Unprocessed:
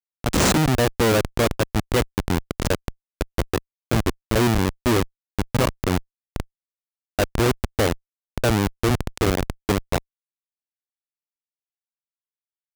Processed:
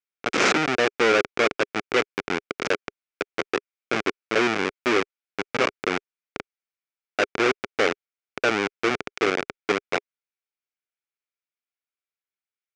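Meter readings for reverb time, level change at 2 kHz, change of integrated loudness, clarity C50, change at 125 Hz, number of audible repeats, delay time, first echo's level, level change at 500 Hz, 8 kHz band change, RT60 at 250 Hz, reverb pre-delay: none, +4.5 dB, -1.5 dB, none, -18.5 dB, none, none, none, -0.5 dB, -7.5 dB, none, none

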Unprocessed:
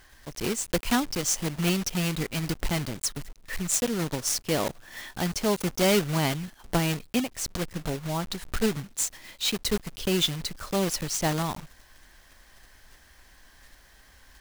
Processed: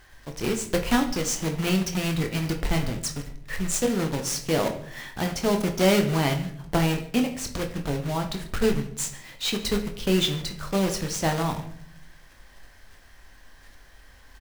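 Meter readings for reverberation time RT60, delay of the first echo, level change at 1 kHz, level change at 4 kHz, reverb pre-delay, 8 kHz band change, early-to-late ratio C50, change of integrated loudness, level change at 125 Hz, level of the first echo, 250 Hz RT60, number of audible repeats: 0.65 s, 0.144 s, +2.5 dB, 0.0 dB, 21 ms, -1.5 dB, 11.0 dB, +1.5 dB, +3.0 dB, -21.5 dB, 0.95 s, 1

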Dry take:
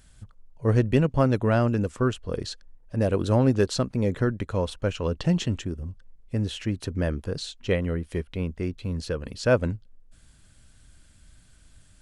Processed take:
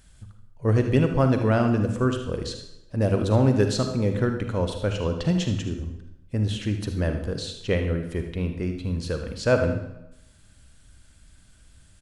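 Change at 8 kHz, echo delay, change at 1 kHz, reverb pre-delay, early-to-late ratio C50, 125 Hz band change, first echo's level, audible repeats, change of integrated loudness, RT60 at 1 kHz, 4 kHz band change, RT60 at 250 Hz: +1.0 dB, 77 ms, +1.0 dB, 39 ms, 6.0 dB, +2.0 dB, -12.0 dB, 1, +1.5 dB, 0.90 s, +1.0 dB, 0.85 s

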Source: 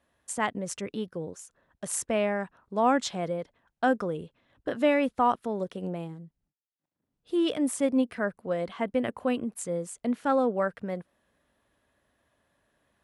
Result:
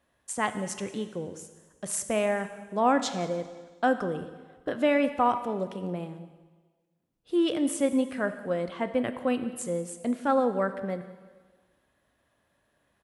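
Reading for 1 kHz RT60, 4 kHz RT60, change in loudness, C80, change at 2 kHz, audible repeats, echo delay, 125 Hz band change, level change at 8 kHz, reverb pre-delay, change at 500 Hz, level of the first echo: 1.4 s, 1.4 s, +0.5 dB, 12.5 dB, +0.5 dB, 1, 0.178 s, +0.5 dB, +0.5 dB, 3 ms, +0.5 dB, -21.5 dB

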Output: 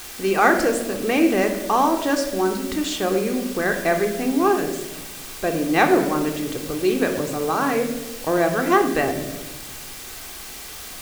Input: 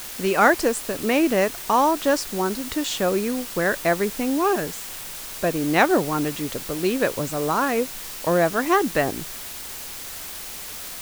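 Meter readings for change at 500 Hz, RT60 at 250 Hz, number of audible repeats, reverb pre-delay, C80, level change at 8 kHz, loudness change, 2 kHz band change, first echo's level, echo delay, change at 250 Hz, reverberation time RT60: +1.5 dB, 1.7 s, none, 3 ms, 10.0 dB, -1.0 dB, +2.0 dB, +0.5 dB, none, none, +2.5 dB, 1.0 s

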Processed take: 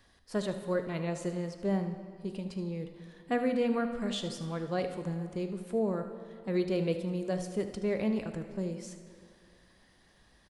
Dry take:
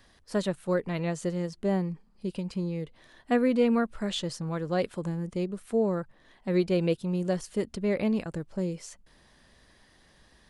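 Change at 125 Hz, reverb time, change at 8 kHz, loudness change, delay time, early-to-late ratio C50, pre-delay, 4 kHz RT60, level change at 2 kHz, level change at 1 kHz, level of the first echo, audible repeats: -4.5 dB, 2.3 s, -4.0 dB, -4.0 dB, 76 ms, 8.0 dB, 3 ms, 1.6 s, -3.5 dB, -3.0 dB, -13.5 dB, 1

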